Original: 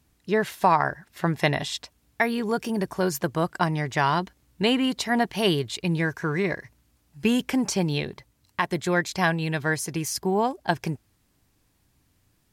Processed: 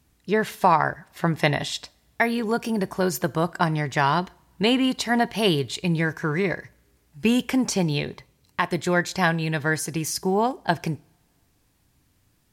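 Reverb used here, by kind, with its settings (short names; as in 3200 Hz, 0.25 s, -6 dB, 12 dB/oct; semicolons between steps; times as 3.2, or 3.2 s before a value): two-slope reverb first 0.45 s, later 2.4 s, from -27 dB, DRR 18 dB; gain +1.5 dB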